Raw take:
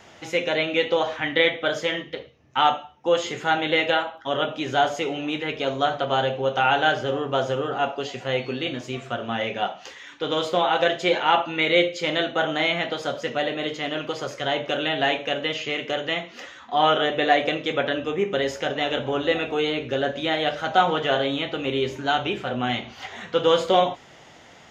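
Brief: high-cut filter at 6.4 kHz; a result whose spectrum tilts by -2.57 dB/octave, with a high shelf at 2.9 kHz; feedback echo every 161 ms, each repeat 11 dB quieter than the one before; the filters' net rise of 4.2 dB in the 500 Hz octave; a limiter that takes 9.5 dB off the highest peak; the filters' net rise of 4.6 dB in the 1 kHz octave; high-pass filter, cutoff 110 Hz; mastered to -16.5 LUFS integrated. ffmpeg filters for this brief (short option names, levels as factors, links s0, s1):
-af "highpass=110,lowpass=6400,equalizer=f=500:t=o:g=3.5,equalizer=f=1000:t=o:g=6,highshelf=f=2900:g=-7,alimiter=limit=0.282:level=0:latency=1,aecho=1:1:161|322|483:0.282|0.0789|0.0221,volume=2.11"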